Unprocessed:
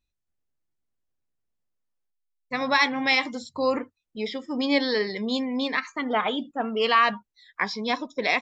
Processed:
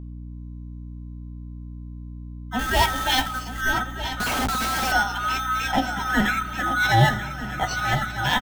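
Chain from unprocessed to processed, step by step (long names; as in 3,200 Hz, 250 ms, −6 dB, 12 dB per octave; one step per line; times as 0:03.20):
neighbouring bands swapped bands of 1,000 Hz
transient designer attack −8 dB, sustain −1 dB
in parallel at −8 dB: sample-rate reduction 4,900 Hz, jitter 0%
on the sum: feedback echo with a long and a short gap by turns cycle 1,245 ms, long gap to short 3 to 1, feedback 45%, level −10.5 dB
on a send at −15 dB: convolution reverb RT60 1.9 s, pre-delay 4 ms
0:02.59–0:03.61: on the sum: log-companded quantiser 4 bits
double-tracking delay 15 ms −8 dB
0:04.20–0:04.92: comparator with hysteresis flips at −36 dBFS
hollow resonant body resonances 230/760 Hz, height 12 dB, ringing for 55 ms
mains hum 60 Hz, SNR 11 dB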